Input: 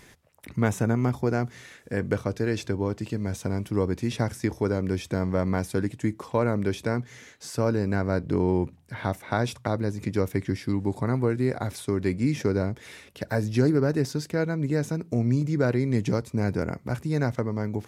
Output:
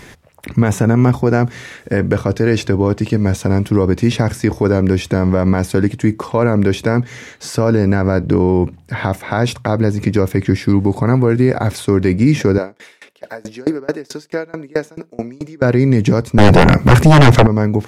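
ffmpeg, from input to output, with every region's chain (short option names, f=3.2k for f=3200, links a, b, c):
-filter_complex "[0:a]asettb=1/sr,asplit=3[a][b][c];[a]atrim=end=12.584[d];[b]atrim=start=12.58:end=15.62,asetpts=PTS-STARTPTS,afade=t=in:d=0.004:c=qsin,afade=t=out:st=3.036:d=0.004:c=qsin,highpass=350,aecho=1:1:87:0.0794,atrim=end_sample=134064,aeval=exprs='val(0)*pow(10,-28*if(lt(mod(4.6*n/s,1),2*abs(4.6)/1000),1-mod(4.6*n/s,1)/(2*abs(4.6)/1000),(mod(4.6*n/s,1)-2*abs(4.6)/1000)/(1-2*abs(4.6)/1000))/20)':c=same[e];[c]atrim=start=15.616[f];[d][e]acrossfade=d=0.004:c1=hsin:c2=qsin[g];[g][f]acrossfade=d=0.004:c1=qsin:c2=hsin,asettb=1/sr,asplit=3[h][i][j];[h]atrim=end=16.384[k];[i]atrim=start=16.38:end=17.47,asetpts=PTS-STARTPTS,afade=t=in:d=0.004:c=qsin,afade=t=out:st=1.086:d=0.004:c=qsin,deesser=0.8,aeval=exprs='0.251*sin(PI/2*4.47*val(0)/0.251)':c=same[l];[j]atrim=start=17.466[m];[k][l]acrossfade=d=0.004:c1=hsin:c2=qsin[n];[n][m]acrossfade=d=0.004:c1=qsin:c2=hsin,highshelf=f=5.2k:g=-6.5,alimiter=level_in=16dB:limit=-1dB:release=50:level=0:latency=1,volume=-1.5dB"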